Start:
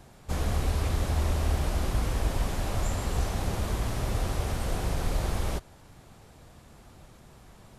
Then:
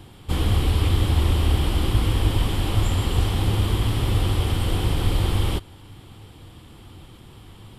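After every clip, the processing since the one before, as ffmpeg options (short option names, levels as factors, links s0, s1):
-af "equalizer=f=100:t=o:w=0.33:g=10,equalizer=f=315:t=o:w=0.33:g=7,equalizer=f=630:t=o:w=0.33:g=-9,equalizer=f=1600:t=o:w=0.33:g=-4,equalizer=f=3150:t=o:w=0.33:g=11,equalizer=f=6300:t=o:w=0.33:g=-11,volume=1.88"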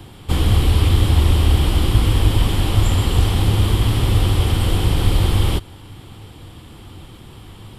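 -filter_complex "[0:a]acrossover=split=210|3000[s0][s1][s2];[s1]acompressor=threshold=0.0355:ratio=6[s3];[s0][s3][s2]amix=inputs=3:normalize=0,volume=1.88"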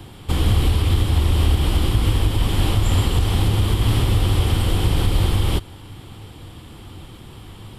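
-af "alimiter=limit=0.398:level=0:latency=1:release=178"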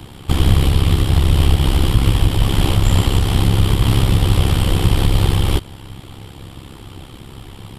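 -af "tremolo=f=67:d=0.788,volume=2.24"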